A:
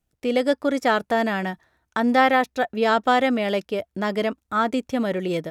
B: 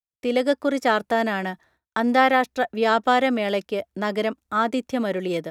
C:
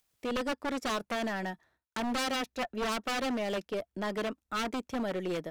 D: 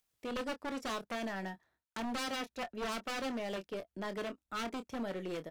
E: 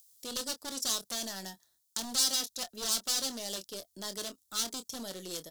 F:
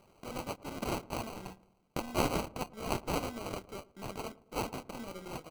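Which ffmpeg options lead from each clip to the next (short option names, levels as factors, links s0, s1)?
-filter_complex "[0:a]acrossover=split=160[s0][s1];[s0]acompressor=threshold=0.00355:ratio=6[s2];[s2][s1]amix=inputs=2:normalize=0,agate=range=0.0224:threshold=0.00251:ratio=3:detection=peak"
-af "aeval=exprs='0.596*(cos(1*acos(clip(val(0)/0.596,-1,1)))-cos(1*PI/2))+0.106*(cos(4*acos(clip(val(0)/0.596,-1,1)))-cos(4*PI/2))':c=same,aeval=exprs='0.119*(abs(mod(val(0)/0.119+3,4)-2)-1)':c=same,acompressor=mode=upward:threshold=0.00447:ratio=2.5,volume=0.422"
-filter_complex "[0:a]asplit=2[s0][s1];[s1]adelay=26,volume=0.299[s2];[s0][s2]amix=inputs=2:normalize=0,volume=0.501"
-af "aexciter=amount=11.1:drive=6.5:freq=3600,volume=0.596"
-filter_complex "[0:a]acrusher=samples=25:mix=1:aa=0.000001,asplit=2[s0][s1];[s1]adelay=111,lowpass=f=1000:p=1,volume=0.106,asplit=2[s2][s3];[s3]adelay=111,lowpass=f=1000:p=1,volume=0.54,asplit=2[s4][s5];[s5]adelay=111,lowpass=f=1000:p=1,volume=0.54,asplit=2[s6][s7];[s7]adelay=111,lowpass=f=1000:p=1,volume=0.54[s8];[s0][s2][s4][s6][s8]amix=inputs=5:normalize=0,volume=0.794"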